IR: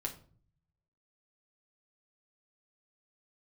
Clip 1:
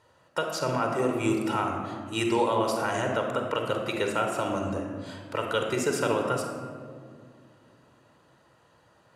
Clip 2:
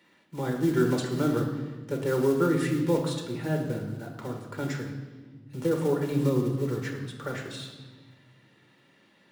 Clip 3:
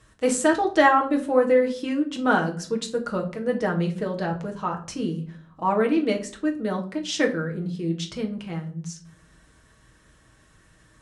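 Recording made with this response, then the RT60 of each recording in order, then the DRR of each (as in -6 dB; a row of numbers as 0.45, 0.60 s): 3; 2.1, 1.4, 0.45 s; 2.5, 1.0, 1.0 dB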